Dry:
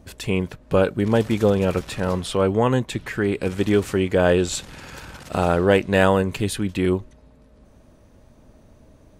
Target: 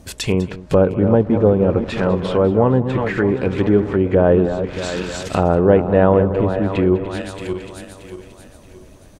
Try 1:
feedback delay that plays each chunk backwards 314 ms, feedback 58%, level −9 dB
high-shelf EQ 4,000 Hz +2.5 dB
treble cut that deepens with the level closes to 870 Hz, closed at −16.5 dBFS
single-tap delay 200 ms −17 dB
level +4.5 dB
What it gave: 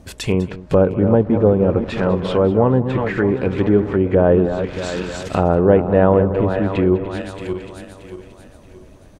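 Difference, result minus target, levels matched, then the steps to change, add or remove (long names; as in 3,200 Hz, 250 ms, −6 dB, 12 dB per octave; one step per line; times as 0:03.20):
8,000 Hz band −4.0 dB
change: high-shelf EQ 4,000 Hz +10 dB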